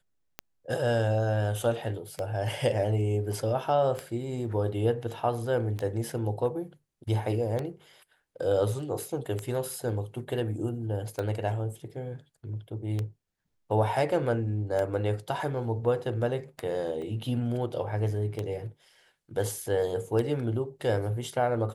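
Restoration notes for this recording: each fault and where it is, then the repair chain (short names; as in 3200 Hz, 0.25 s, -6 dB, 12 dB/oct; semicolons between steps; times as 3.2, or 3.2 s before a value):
tick 33 1/3 rpm -18 dBFS
17.02 gap 2.2 ms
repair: de-click; interpolate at 17.02, 2.2 ms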